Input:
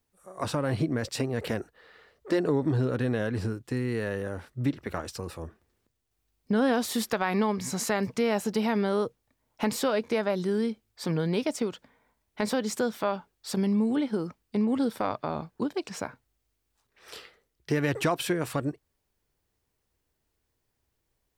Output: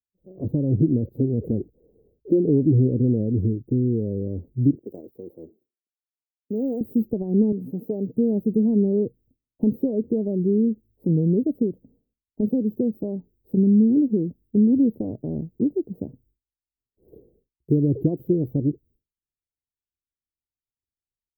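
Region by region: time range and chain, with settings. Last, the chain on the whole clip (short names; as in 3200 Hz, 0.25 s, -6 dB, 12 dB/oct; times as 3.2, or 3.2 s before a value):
4.75–6.81 HPF 410 Hz + short-mantissa float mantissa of 4-bit
7.52–8.15 HPF 250 Hz + comb 6.6 ms, depth 34%
whole clip: expander -58 dBFS; inverse Chebyshev band-stop 1200–9700 Hz, stop band 60 dB; gain +9 dB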